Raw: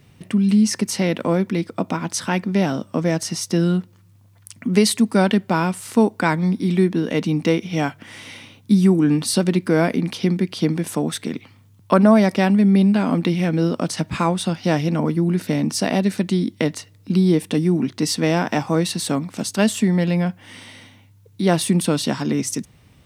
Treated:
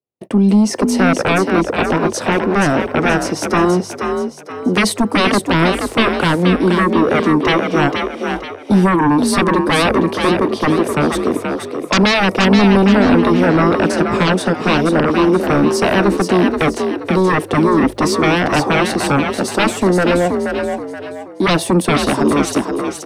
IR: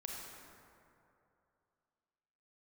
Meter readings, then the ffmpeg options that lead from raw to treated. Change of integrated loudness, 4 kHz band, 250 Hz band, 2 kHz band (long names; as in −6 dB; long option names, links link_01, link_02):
+5.0 dB, +6.5 dB, +4.0 dB, +11.0 dB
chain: -filter_complex "[0:a]agate=range=-48dB:threshold=-37dB:ratio=16:detection=peak,equalizer=frequency=99:width_type=o:width=0.33:gain=9,acrossover=split=360|710|6100[link_01][link_02][link_03][link_04];[link_01]flanger=delay=15:depth=5.9:speed=0.13[link_05];[link_02]aeval=exprs='0.266*sin(PI/2*7.94*val(0)/0.266)':channel_layout=same[link_06];[link_05][link_06][link_03][link_04]amix=inputs=4:normalize=0,asplit=5[link_07][link_08][link_09][link_10][link_11];[link_08]adelay=477,afreqshift=46,volume=-5.5dB[link_12];[link_09]adelay=954,afreqshift=92,volume=-14.1dB[link_13];[link_10]adelay=1431,afreqshift=138,volume=-22.8dB[link_14];[link_11]adelay=1908,afreqshift=184,volume=-31.4dB[link_15];[link_07][link_12][link_13][link_14][link_15]amix=inputs=5:normalize=0"